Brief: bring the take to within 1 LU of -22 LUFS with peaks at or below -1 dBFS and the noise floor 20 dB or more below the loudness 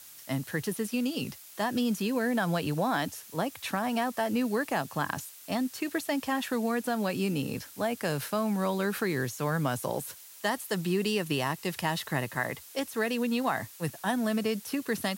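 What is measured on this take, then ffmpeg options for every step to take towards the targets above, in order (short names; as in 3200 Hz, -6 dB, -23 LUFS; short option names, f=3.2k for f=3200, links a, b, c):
noise floor -50 dBFS; noise floor target -51 dBFS; loudness -31.0 LUFS; peak -14.5 dBFS; loudness target -22.0 LUFS
-> -af "afftdn=nr=6:nf=-50"
-af "volume=9dB"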